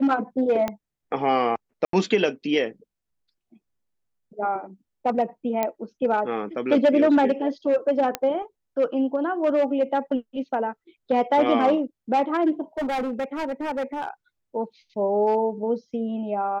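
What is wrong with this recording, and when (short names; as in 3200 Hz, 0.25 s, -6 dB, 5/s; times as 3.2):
0.68 pop -13 dBFS
1.85–1.93 gap 83 ms
5.63 pop -10 dBFS
8.15 pop -9 dBFS
12.77–14.09 clipped -23.5 dBFS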